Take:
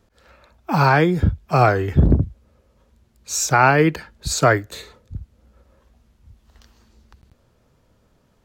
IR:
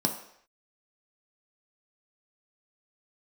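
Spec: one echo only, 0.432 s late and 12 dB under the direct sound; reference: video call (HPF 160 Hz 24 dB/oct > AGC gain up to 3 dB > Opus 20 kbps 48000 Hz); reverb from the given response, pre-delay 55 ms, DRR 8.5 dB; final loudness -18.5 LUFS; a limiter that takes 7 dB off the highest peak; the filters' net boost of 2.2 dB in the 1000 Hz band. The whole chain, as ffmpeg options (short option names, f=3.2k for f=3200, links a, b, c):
-filter_complex "[0:a]equalizer=f=1k:t=o:g=3,alimiter=limit=-7.5dB:level=0:latency=1,aecho=1:1:432:0.251,asplit=2[a][b];[1:a]atrim=start_sample=2205,adelay=55[c];[b][c]afir=irnorm=-1:irlink=0,volume=-16.5dB[d];[a][d]amix=inputs=2:normalize=0,highpass=f=160:w=0.5412,highpass=f=160:w=1.3066,dynaudnorm=m=3dB,volume=1.5dB" -ar 48000 -c:a libopus -b:a 20k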